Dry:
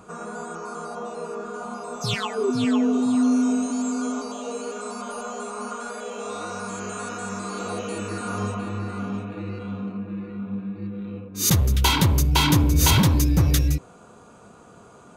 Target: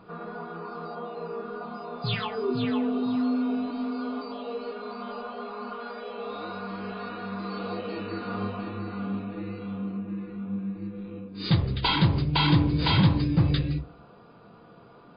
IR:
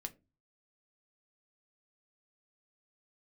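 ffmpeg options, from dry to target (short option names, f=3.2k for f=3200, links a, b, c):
-filter_complex "[1:a]atrim=start_sample=2205[a];[0:a][a]afir=irnorm=-1:irlink=0" -ar 11025 -c:a libmp3lame -b:a 24k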